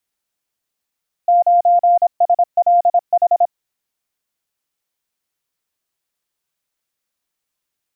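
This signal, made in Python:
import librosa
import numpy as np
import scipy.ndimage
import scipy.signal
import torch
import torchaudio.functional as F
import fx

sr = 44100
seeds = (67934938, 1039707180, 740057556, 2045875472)

y = fx.morse(sr, text='9SLH', wpm=26, hz=699.0, level_db=-8.5)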